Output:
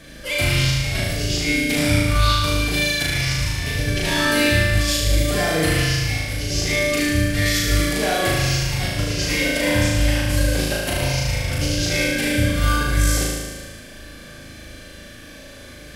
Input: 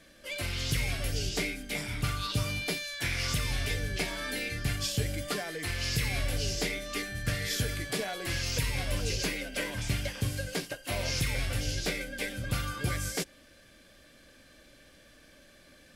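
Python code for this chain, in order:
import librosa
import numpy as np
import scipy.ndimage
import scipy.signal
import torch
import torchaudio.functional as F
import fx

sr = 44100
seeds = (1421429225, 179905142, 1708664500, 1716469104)

y = fx.over_compress(x, sr, threshold_db=-34.0, ratio=-0.5)
y = fx.peak_eq(y, sr, hz=80.0, db=6.0, octaves=2.6)
y = fx.room_flutter(y, sr, wall_m=6.4, rt60_s=1.4)
y = F.gain(torch.from_numpy(y), 8.5).numpy()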